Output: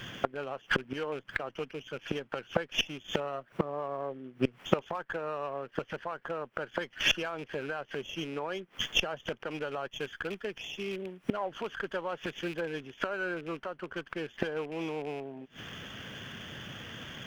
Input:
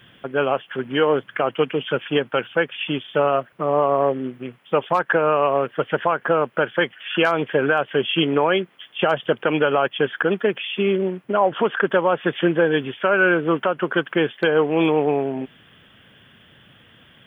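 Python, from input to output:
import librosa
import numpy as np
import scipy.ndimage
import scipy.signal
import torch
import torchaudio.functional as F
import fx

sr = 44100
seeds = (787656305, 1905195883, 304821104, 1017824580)

y = fx.rattle_buzz(x, sr, strikes_db=-26.0, level_db=-19.0)
y = fx.high_shelf(y, sr, hz=2900.0, db=11.0, at=(9.91, 12.61))
y = fx.gate_flip(y, sr, shuts_db=-21.0, range_db=-25)
y = fx.running_max(y, sr, window=3)
y = F.gain(torch.from_numpy(y), 7.5).numpy()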